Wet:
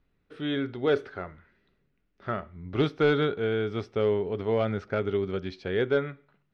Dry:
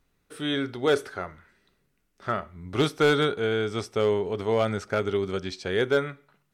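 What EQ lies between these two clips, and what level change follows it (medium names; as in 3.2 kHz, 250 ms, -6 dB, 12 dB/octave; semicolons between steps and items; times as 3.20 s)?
distance through air 270 m; peaking EQ 990 Hz -4 dB 1.3 oct; 0.0 dB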